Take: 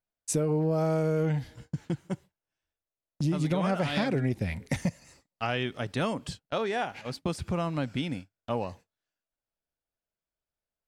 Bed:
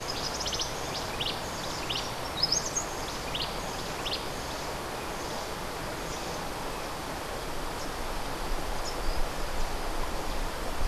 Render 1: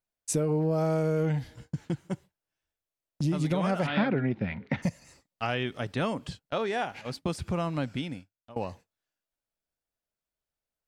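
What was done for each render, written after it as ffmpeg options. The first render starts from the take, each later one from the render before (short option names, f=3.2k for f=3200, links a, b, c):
-filter_complex "[0:a]asplit=3[a][b][c];[a]afade=t=out:st=3.86:d=0.02[d];[b]highpass=120,equalizer=f=210:t=q:w=4:g=5,equalizer=f=920:t=q:w=4:g=3,equalizer=f=1.4k:t=q:w=4:g=6,lowpass=f=3.4k:w=0.5412,lowpass=f=3.4k:w=1.3066,afade=t=in:st=3.86:d=0.02,afade=t=out:st=4.82:d=0.02[e];[c]afade=t=in:st=4.82:d=0.02[f];[d][e][f]amix=inputs=3:normalize=0,asettb=1/sr,asplit=3[g][h][i];[g]atrim=end=5.544[j];[h]atrim=start=5.54:end=6.68,asetpts=PTS-STARTPTS,afade=t=in:d=0.004:c=qsin,afade=t=out:st=1.136:d=0.004:c=qsin,acrossover=split=4100[k][l];[l]acompressor=threshold=-49dB:ratio=4:attack=1:release=60[m];[k][m]amix=inputs=2:normalize=0[n];[i]atrim=start=6.676[o];[j][n]acrossfade=d=0.004:c1=hsin:c2=qsin[p];[p][o]acrossfade=d=0.004:c1=qsin:c2=hsin,asplit=2[q][r];[q]atrim=end=8.56,asetpts=PTS-STARTPTS,afade=t=out:st=7.84:d=0.72:silence=0.0794328[s];[r]atrim=start=8.56,asetpts=PTS-STARTPTS,afade=t=in:d=0.004:c=hsin:silence=0.0794328[t];[s][t]concat=n=2:v=0:a=1"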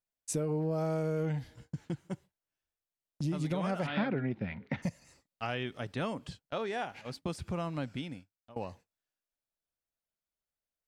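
-af "volume=-5.5dB"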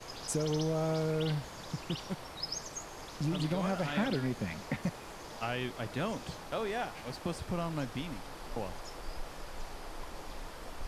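-filter_complex "[1:a]volume=-11.5dB[a];[0:a][a]amix=inputs=2:normalize=0"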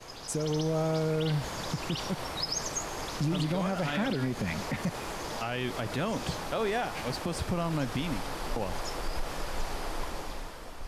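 -af "dynaudnorm=f=140:g=11:m=9.5dB,alimiter=limit=-21.5dB:level=0:latency=1:release=90"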